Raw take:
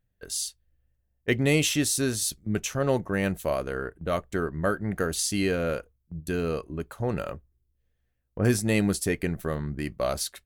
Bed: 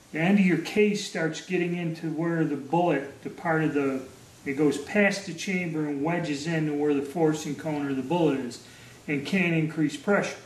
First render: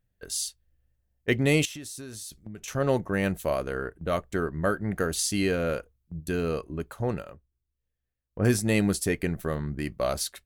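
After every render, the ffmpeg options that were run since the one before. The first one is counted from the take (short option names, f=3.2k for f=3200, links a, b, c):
-filter_complex "[0:a]asettb=1/sr,asplit=3[a][b][c];[a]atrim=end=1.654[d];[b]atrim=start=1.65:end=2.68,asetpts=PTS-STARTPTS,afade=t=in:d=0.004:c=qsin,afade=t=out:st=1.026:d=0.004:c=qsin,acompressor=threshold=-36dB:ratio=10:attack=3.2:release=140:knee=1:detection=peak[e];[c]atrim=start=2.676[f];[d][e]acrossfade=d=0.004:c1=hsin:c2=qsin[g];[g][f]acrossfade=d=0.004:c1=qsin:c2=hsin,asplit=3[h][i][j];[h]atrim=end=7.24,asetpts=PTS-STARTPTS,afade=t=out:st=7.1:d=0.14:silence=0.316228[k];[i]atrim=start=7.24:end=8.29,asetpts=PTS-STARTPTS,volume=-10dB[l];[j]atrim=start=8.29,asetpts=PTS-STARTPTS,afade=t=in:d=0.14:silence=0.316228[m];[k][l][m]concat=n=3:v=0:a=1"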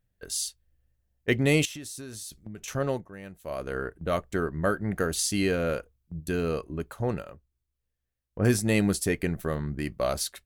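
-filter_complex "[0:a]asplit=3[a][b][c];[a]atrim=end=3.1,asetpts=PTS-STARTPTS,afade=t=out:st=2.73:d=0.37:silence=0.149624[d];[b]atrim=start=3.1:end=3.4,asetpts=PTS-STARTPTS,volume=-16.5dB[e];[c]atrim=start=3.4,asetpts=PTS-STARTPTS,afade=t=in:d=0.37:silence=0.149624[f];[d][e][f]concat=n=3:v=0:a=1"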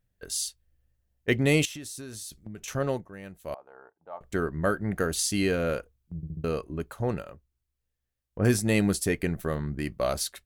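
-filter_complex "[0:a]asettb=1/sr,asplit=3[a][b][c];[a]atrim=end=3.544[d];[b]atrim=start=3.54:end=4.21,asetpts=PTS-STARTPTS,afade=t=in:d=0.004:c=qsin,afade=t=out:st=0.666:d=0.004:c=qsin,bandpass=f=840:t=q:w=7.5[e];[c]atrim=start=4.206[f];[d][e]acrossfade=d=0.004:c1=hsin:c2=qsin[g];[g][f]acrossfade=d=0.004:c1=qsin:c2=hsin,asplit=5[h][i][j][k][l];[h]atrim=end=6.232[m];[i]atrim=start=6.158:end=6.232[n];[j]atrim=start=6.158:end=6.232[o];[k]atrim=start=6.158:end=6.232[p];[l]atrim=start=6.438[q];[m][n]acrossfade=d=0.004:c1=hsin:c2=hsin[r];[r][o]acrossfade=d=0.004:c1=hsin:c2=hsin[s];[s][p]acrossfade=d=0.004:c1=hsin:c2=hsin[t];[t][q]acrossfade=d=0.004:c1=hsin:c2=hsin"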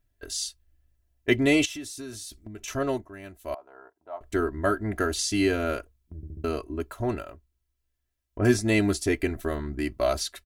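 -filter_complex "[0:a]acrossover=split=7800[a][b];[b]acompressor=threshold=-47dB:ratio=4:attack=1:release=60[c];[a][c]amix=inputs=2:normalize=0,aecho=1:1:3:0.86"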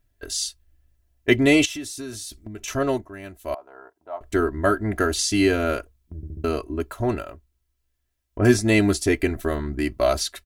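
-af "volume=4.5dB"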